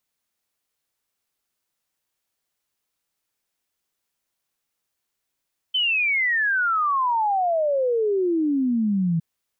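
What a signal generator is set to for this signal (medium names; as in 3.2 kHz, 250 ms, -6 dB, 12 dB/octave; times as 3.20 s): log sweep 3.1 kHz -> 160 Hz 3.46 s -18.5 dBFS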